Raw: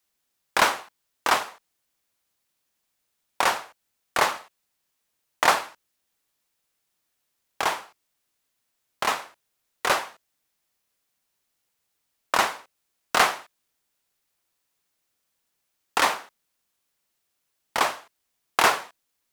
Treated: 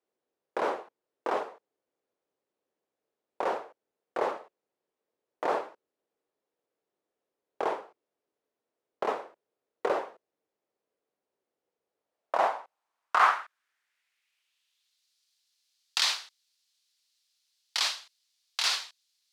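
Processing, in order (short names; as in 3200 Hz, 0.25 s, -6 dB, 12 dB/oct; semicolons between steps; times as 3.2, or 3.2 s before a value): high shelf 4500 Hz +5 dB; limiter -13 dBFS, peak gain reduction 10.5 dB; band-pass sweep 440 Hz -> 4300 Hz, 11.84–15.08; gain +8 dB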